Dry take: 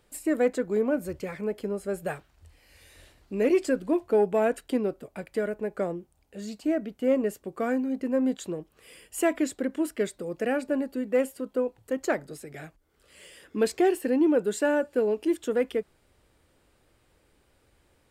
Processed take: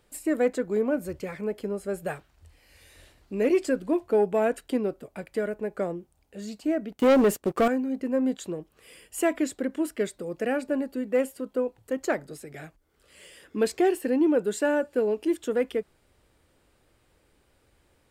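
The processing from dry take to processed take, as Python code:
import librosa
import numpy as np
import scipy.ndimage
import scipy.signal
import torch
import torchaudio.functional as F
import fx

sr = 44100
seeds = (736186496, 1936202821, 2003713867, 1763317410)

y = fx.leveller(x, sr, passes=3, at=(6.92, 7.68))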